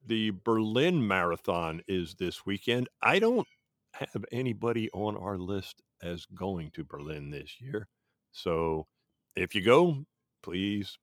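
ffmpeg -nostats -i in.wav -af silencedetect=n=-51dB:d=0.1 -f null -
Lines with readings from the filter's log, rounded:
silence_start: 2.88
silence_end: 3.01 | silence_duration: 0.13
silence_start: 3.44
silence_end: 3.94 | silence_duration: 0.50
silence_start: 5.72
silence_end: 6.01 | silence_duration: 0.28
silence_start: 7.85
silence_end: 8.35 | silence_duration: 0.50
silence_start: 8.84
silence_end: 9.31 | silence_duration: 0.47
silence_start: 10.04
silence_end: 10.44 | silence_duration: 0.40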